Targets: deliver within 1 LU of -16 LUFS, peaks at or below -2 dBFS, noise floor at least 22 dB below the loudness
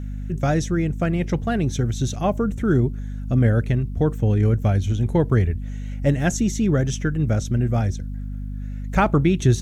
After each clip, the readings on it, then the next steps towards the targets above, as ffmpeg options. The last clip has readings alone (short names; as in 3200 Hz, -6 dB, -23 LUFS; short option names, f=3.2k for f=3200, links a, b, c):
hum 50 Hz; harmonics up to 250 Hz; hum level -26 dBFS; loudness -21.5 LUFS; peak -5.5 dBFS; loudness target -16.0 LUFS
-> -af "bandreject=f=50:t=h:w=4,bandreject=f=100:t=h:w=4,bandreject=f=150:t=h:w=4,bandreject=f=200:t=h:w=4,bandreject=f=250:t=h:w=4"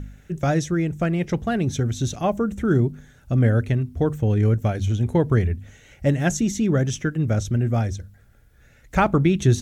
hum none; loudness -22.5 LUFS; peak -6.0 dBFS; loudness target -16.0 LUFS
-> -af "volume=6.5dB,alimiter=limit=-2dB:level=0:latency=1"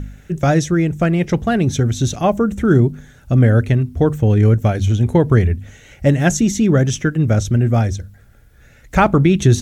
loudness -16.0 LUFS; peak -2.0 dBFS; noise floor -47 dBFS